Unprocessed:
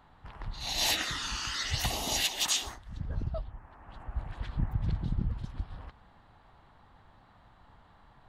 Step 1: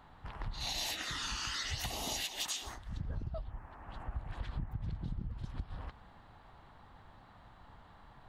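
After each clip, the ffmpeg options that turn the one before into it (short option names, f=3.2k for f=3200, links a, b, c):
-af "acompressor=threshold=-36dB:ratio=12,volume=1.5dB"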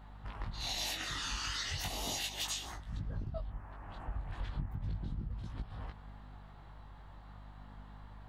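-af "aeval=exprs='val(0)+0.00224*(sin(2*PI*50*n/s)+sin(2*PI*2*50*n/s)/2+sin(2*PI*3*50*n/s)/3+sin(2*PI*4*50*n/s)/4+sin(2*PI*5*50*n/s)/5)':c=same,flanger=delay=18.5:depth=3.8:speed=0.36,volume=3dB"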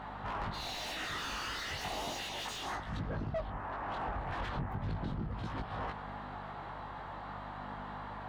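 -filter_complex "[0:a]asplit=2[a][b];[b]highpass=f=720:p=1,volume=29dB,asoftclip=type=tanh:threshold=-23.5dB[c];[a][c]amix=inputs=2:normalize=0,lowpass=f=1.1k:p=1,volume=-6dB,volume=-2dB"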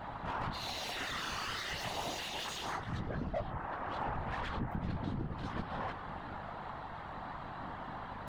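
-af "areverse,acompressor=mode=upward:threshold=-48dB:ratio=2.5,areverse,afftfilt=real='hypot(re,im)*cos(2*PI*random(0))':imag='hypot(re,im)*sin(2*PI*random(1))':win_size=512:overlap=0.75,volume=6dB"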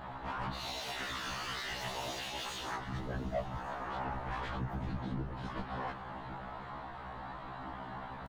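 -af "aecho=1:1:1159|2318|3477:0.1|0.038|0.0144,afftfilt=real='re*1.73*eq(mod(b,3),0)':imag='im*1.73*eq(mod(b,3),0)':win_size=2048:overlap=0.75,volume=2dB"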